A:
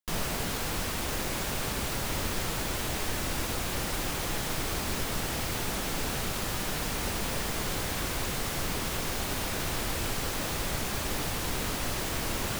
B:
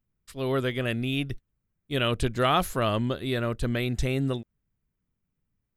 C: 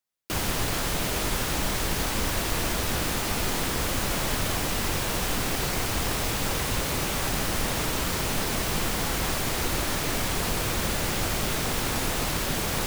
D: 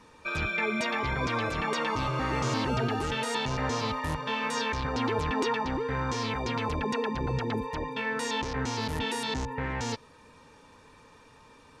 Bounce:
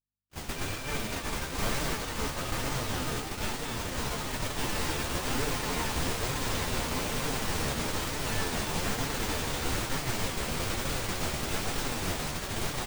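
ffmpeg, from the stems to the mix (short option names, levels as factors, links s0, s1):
-filter_complex "[0:a]adelay=1500,volume=0.944[s0];[1:a]acompressor=threshold=0.0224:ratio=2,volume=0.335,asplit=2[s1][s2];[2:a]aeval=exprs='val(0)+0.0112*(sin(2*PI*50*n/s)+sin(2*PI*2*50*n/s)/2+sin(2*PI*3*50*n/s)/3+sin(2*PI*4*50*n/s)/4+sin(2*PI*5*50*n/s)/5)':c=same,volume=0.891[s3];[3:a]adelay=300,volume=0.562[s4];[s2]apad=whole_len=621691[s5];[s0][s5]sidechaincompress=threshold=0.00398:ratio=8:attack=16:release=429[s6];[s6][s1][s3][s4]amix=inputs=4:normalize=0,agate=range=0.00316:threshold=0.0501:ratio=16:detection=peak,equalizer=f=12000:w=5.1:g=-14,flanger=delay=6.5:depth=7.8:regen=39:speed=1.1:shape=triangular"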